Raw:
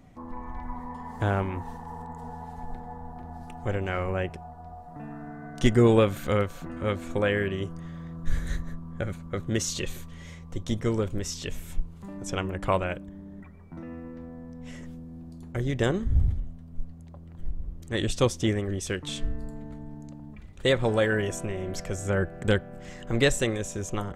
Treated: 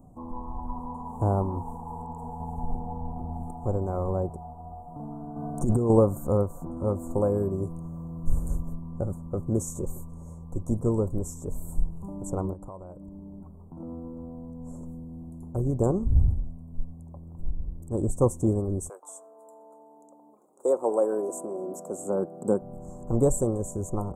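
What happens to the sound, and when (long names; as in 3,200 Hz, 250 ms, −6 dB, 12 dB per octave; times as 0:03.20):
0:02.40–0:03.51: low-shelf EQ 410 Hz +6 dB
0:05.36–0:05.90: compressor whose output falls as the input rises −24 dBFS
0:06.99–0:08.81: high-shelf EQ 11,000 Hz +8.5 dB
0:11.53–0:11.98: thrown reverb, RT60 0.92 s, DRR 4 dB
0:12.53–0:13.80: downward compressor 5 to 1, threshold −40 dBFS
0:17.51–0:18.22: parametric band 2,900 Hz −5.5 dB 2.4 octaves
0:18.88–0:22.61: high-pass filter 660 Hz → 170 Hz 24 dB per octave
whole clip: elliptic band-stop filter 1,000–7,800 Hz, stop band 40 dB; level +2 dB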